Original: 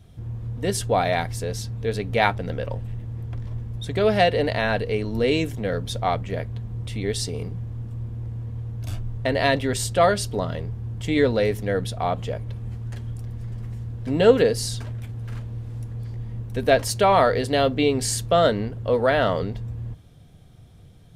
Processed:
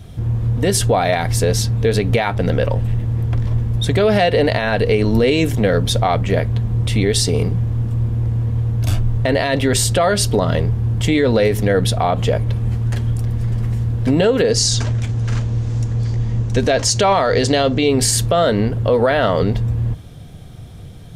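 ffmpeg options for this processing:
ffmpeg -i in.wav -filter_complex "[0:a]asettb=1/sr,asplit=3[link_01][link_02][link_03];[link_01]atrim=end=14.514[link_04];[link_02]atrim=start=14.51:end=17.88,asetpts=PTS-STARTPTS,afade=type=in:duration=0.004:curve=qsin,afade=type=out:start_time=3.366:duration=0.004:curve=qsin,lowpass=frequency=6600:width_type=q:width=2.6[link_05];[link_03]atrim=start=17.876[link_06];[link_04][link_05]acrossfade=duration=0.004:curve1=hsin:curve2=qsin[link_07];[link_07][link_06]acrossfade=duration=0.004:curve1=qsin:curve2=hsin,acompressor=threshold=-22dB:ratio=3,alimiter=level_in=18.5dB:limit=-1dB:release=50:level=0:latency=1,volume=-5.5dB" out.wav

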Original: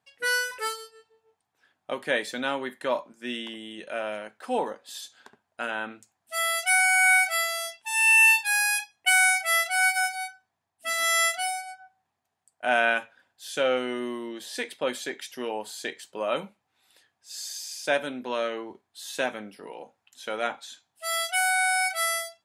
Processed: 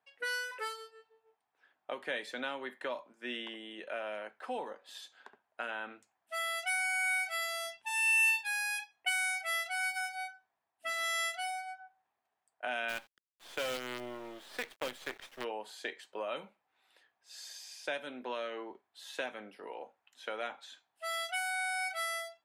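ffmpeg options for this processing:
ffmpeg -i in.wav -filter_complex "[0:a]asplit=3[link_01][link_02][link_03];[link_01]afade=type=out:start_time=7.41:duration=0.02[link_04];[link_02]bass=frequency=250:gain=15,treble=frequency=4000:gain=4,afade=type=in:start_time=7.41:duration=0.02,afade=type=out:start_time=8.29:duration=0.02[link_05];[link_03]afade=type=in:start_time=8.29:duration=0.02[link_06];[link_04][link_05][link_06]amix=inputs=3:normalize=0,asplit=3[link_07][link_08][link_09];[link_07]afade=type=out:start_time=12.88:duration=0.02[link_10];[link_08]acrusher=bits=5:dc=4:mix=0:aa=0.000001,afade=type=in:start_time=12.88:duration=0.02,afade=type=out:start_time=15.43:duration=0.02[link_11];[link_09]afade=type=in:start_time=15.43:duration=0.02[link_12];[link_10][link_11][link_12]amix=inputs=3:normalize=0,bass=frequency=250:gain=-15,treble=frequency=4000:gain=-13,acrossover=split=220|3000[link_13][link_14][link_15];[link_14]acompressor=threshold=-34dB:ratio=6[link_16];[link_13][link_16][link_15]amix=inputs=3:normalize=0,volume=-2dB" out.wav

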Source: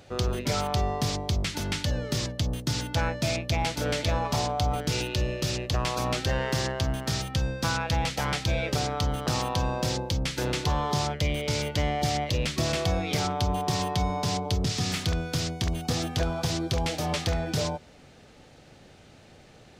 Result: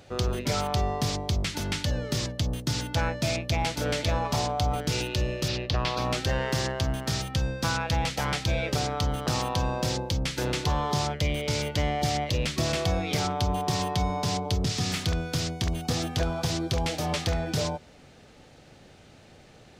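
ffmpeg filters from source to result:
ffmpeg -i in.wav -filter_complex "[0:a]asettb=1/sr,asplit=3[link_01][link_02][link_03];[link_01]atrim=end=5.484[link_04];[link_02]atrim=start=5.48:end=6.05,asetpts=PTS-STARTPTS,afade=type=in:duration=0.004:curve=qsin,afade=type=out:start_time=0.566:duration=0.004:curve=qsin,highshelf=frequency=6000:width_type=q:width=1.5:gain=-10.5[link_05];[link_03]atrim=start=6.046[link_06];[link_04][link_05]acrossfade=duration=0.004:curve1=hsin:curve2=qsin[link_07];[link_07][link_06]acrossfade=duration=0.004:curve1=qsin:curve2=hsin" out.wav

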